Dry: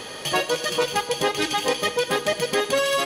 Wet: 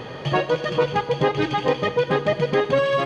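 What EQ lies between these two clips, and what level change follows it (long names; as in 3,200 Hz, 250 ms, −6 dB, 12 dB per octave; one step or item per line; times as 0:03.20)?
head-to-tape spacing loss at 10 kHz 34 dB
parametric band 130 Hz +13 dB 0.45 octaves
+5.0 dB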